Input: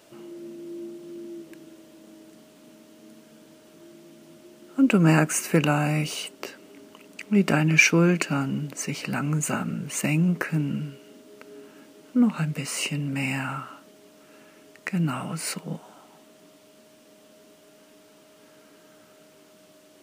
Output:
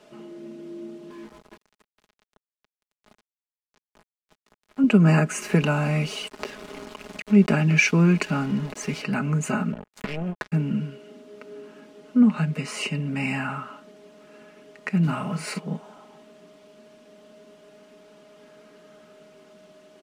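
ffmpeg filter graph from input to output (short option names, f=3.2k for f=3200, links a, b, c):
-filter_complex "[0:a]asettb=1/sr,asplit=3[a][b][c];[a]atrim=end=1.104[d];[b]atrim=start=1.1:end=4.84,asetpts=PTS-STARTPTS,afade=t=in:d=0.004:c=qsin,afade=t=out:st=3.736:d=0.004:c=qsin,flanger=delay=16.5:depth=3:speed=1.8,aeval=exprs='val(0)*gte(abs(val(0)),0.00668)':c=same[e];[c]atrim=start=4.836[f];[d][e]acrossfade=d=0.004:c1=hsin:c2=qsin[g];[g][f]acrossfade=d=0.004:c1=qsin:c2=hsin,asettb=1/sr,asplit=3[h][i][j];[h]atrim=end=5.424[k];[i]atrim=start=5.42:end=9.02,asetpts=PTS-STARTPTS,afade=t=in:d=0.004:c=qsin,afade=t=out:st=3.596:d=0.004:c=qsin,acompressor=mode=upward:threshold=-27dB:ratio=2.5:attack=3.2:release=140:knee=2.83:detection=peak,aeval=exprs='val(0)*gte(abs(val(0)),0.0168)':c=same[l];[j]atrim=start=9.016[m];[k][l]acrossfade=d=0.004:c1=hsin:c2=qsin[n];[n][m]acrossfade=d=0.004:c1=qsin:c2=hsin,asettb=1/sr,asplit=3[o][p][q];[o]atrim=end=9.724[r];[p]atrim=start=9.72:end=10.52,asetpts=PTS-STARTPTS,afade=t=in:d=0.004:c=qsin,afade=t=out:st=0.796:d=0.004:c=qsin,equalizer=f=7k:w=0.5:g=-6,acompressor=threshold=-26dB:ratio=4:attack=3.2:release=140:knee=1:detection=peak,acrusher=bits=3:mix=0:aa=0.5[s];[q]atrim=start=10.516[t];[r][s]acrossfade=d=0.004:c1=hsin:c2=qsin[u];[u][t]acrossfade=d=0.004:c1=qsin:c2=hsin,asettb=1/sr,asplit=3[v][w][x];[v]atrim=end=15.034[y];[w]atrim=start=15.03:end=15.59,asetpts=PTS-STARTPTS,afade=t=in:d=0.004:c=qsin,afade=t=out:st=0.556:d=0.004:c=qsin,acrusher=bits=6:mode=log:mix=0:aa=0.000001,asplit=2[z][aa];[aa]adelay=46,volume=-8.5dB[ab];[z][ab]amix=inputs=2:normalize=0,atrim=end_sample=24696[ac];[x]atrim=start=15.586[ad];[y][ac]acrossfade=d=0.004:c1=hsin:c2=qsin[ae];[ae][ad]acrossfade=d=0.004:c1=qsin:c2=hsin,aemphasis=mode=reproduction:type=50fm,acrossover=split=280|3000[af][ag][ah];[ag]acompressor=threshold=-29dB:ratio=1.5[ai];[af][ai][ah]amix=inputs=3:normalize=0,aecho=1:1:4.8:0.55,volume=1dB"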